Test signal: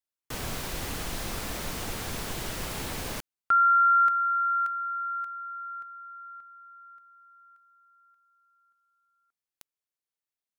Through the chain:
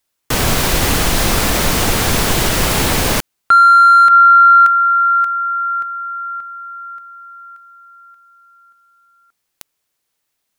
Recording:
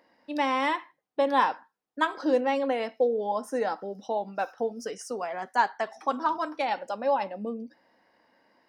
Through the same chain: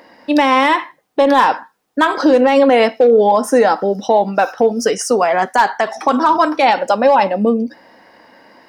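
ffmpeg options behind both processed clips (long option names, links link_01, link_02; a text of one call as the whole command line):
ffmpeg -i in.wav -filter_complex "[0:a]asplit=2[link_01][link_02];[link_02]acrusher=bits=2:mix=0:aa=0.5,volume=-3.5dB[link_03];[link_01][link_03]amix=inputs=2:normalize=0,asoftclip=type=tanh:threshold=-13.5dB,alimiter=level_in=22dB:limit=-1dB:release=50:level=0:latency=1,volume=-2.5dB" out.wav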